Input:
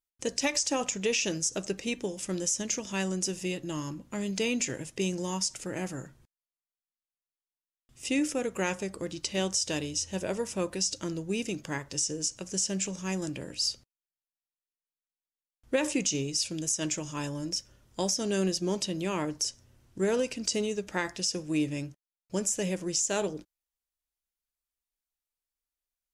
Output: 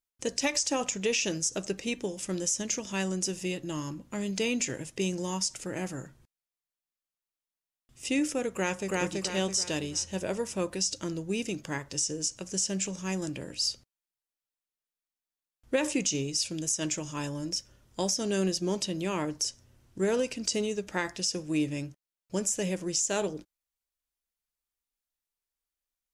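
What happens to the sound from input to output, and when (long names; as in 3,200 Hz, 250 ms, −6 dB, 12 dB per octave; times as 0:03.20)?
0:08.53–0:09.00: delay throw 330 ms, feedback 40%, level −0.5 dB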